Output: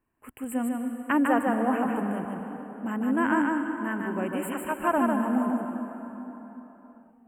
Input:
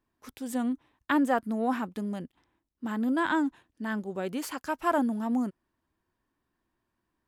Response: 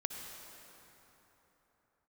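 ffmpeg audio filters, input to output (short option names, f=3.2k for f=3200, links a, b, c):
-filter_complex "[0:a]asuperstop=centerf=4800:order=20:qfactor=1.1,asplit=2[a][b];[1:a]atrim=start_sample=2205,adelay=150[c];[b][c]afir=irnorm=-1:irlink=0,volume=-2dB[d];[a][d]amix=inputs=2:normalize=0,volume=1dB"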